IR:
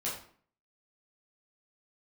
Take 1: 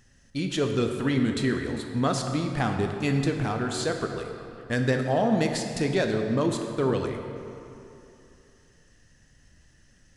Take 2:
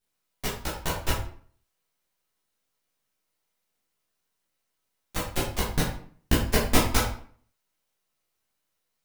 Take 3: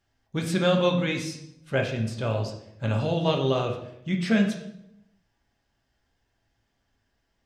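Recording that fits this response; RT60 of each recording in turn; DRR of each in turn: 2; 2.8, 0.50, 0.80 s; 3.5, -7.0, 1.5 dB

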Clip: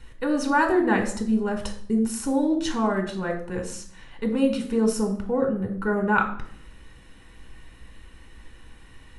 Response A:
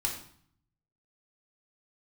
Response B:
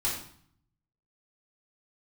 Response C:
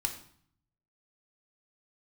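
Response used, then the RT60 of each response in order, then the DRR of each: C; 0.55, 0.55, 0.60 s; -1.0, -8.0, 3.5 dB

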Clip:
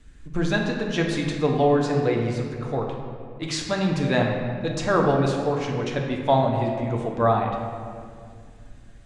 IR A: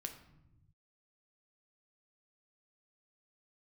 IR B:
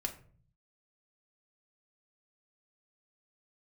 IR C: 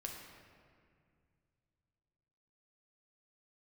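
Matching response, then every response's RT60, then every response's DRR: C; 0.90, 0.45, 2.2 s; 4.5, 1.5, 0.0 dB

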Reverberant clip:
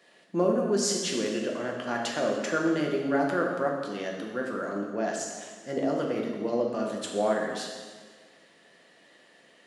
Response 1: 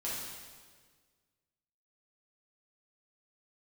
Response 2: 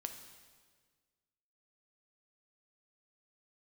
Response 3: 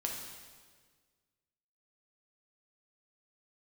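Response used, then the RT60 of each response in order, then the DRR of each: 3; 1.6, 1.6, 1.6 s; -8.5, 5.5, -0.5 dB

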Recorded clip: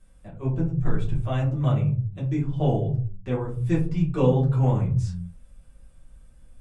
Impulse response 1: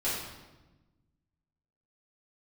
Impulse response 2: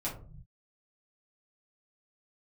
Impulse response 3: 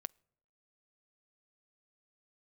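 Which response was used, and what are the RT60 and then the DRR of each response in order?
2; 1.1, 0.45, 0.75 s; -11.0, -7.5, 20.5 dB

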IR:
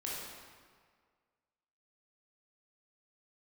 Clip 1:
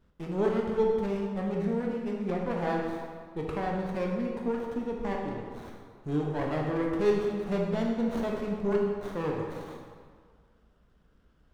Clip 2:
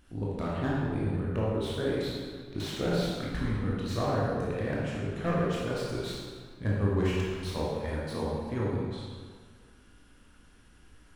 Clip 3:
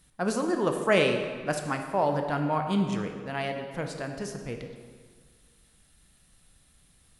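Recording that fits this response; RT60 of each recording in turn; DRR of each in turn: 2; 1.8, 1.8, 1.8 s; -1.0, -6.0, 4.5 dB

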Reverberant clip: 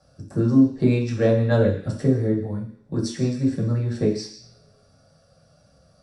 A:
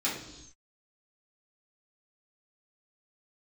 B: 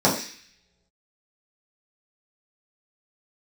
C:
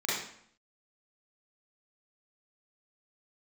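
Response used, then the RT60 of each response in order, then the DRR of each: B; not exponential, not exponential, 0.65 s; -8.0, -7.0, -8.0 dB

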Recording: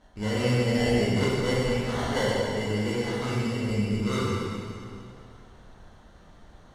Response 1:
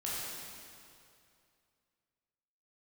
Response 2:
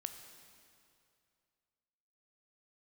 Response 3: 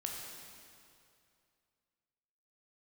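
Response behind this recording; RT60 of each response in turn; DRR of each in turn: 1; 2.5, 2.5, 2.5 s; -7.5, 7.0, -0.5 dB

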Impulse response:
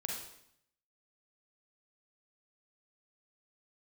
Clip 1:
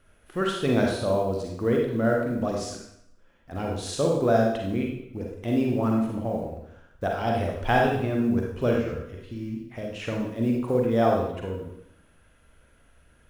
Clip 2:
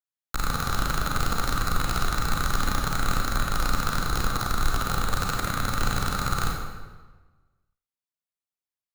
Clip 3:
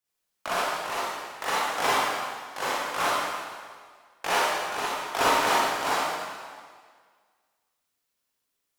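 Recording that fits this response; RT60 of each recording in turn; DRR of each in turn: 1; 0.70, 1.3, 1.8 s; -1.0, -1.0, -9.5 dB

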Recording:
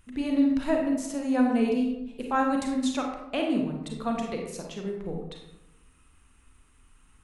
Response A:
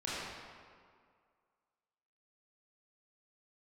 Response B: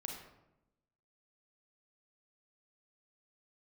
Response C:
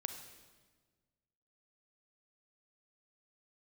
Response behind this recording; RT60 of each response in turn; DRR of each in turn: B; 2.1, 0.90, 1.4 s; -9.5, 0.5, 6.5 dB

